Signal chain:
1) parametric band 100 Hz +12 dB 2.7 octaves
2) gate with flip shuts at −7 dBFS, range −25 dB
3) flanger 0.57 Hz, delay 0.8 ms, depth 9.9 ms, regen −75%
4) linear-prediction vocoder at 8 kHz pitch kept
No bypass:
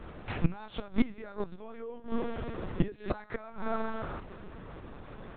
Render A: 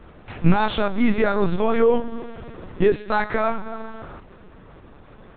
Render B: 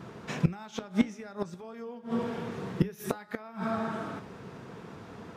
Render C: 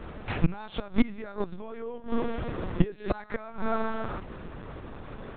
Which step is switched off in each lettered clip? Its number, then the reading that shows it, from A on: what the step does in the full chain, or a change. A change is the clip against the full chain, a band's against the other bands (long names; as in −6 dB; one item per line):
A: 2, change in momentary loudness spread +5 LU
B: 4, 4 kHz band +1.5 dB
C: 3, change in integrated loudness +3.5 LU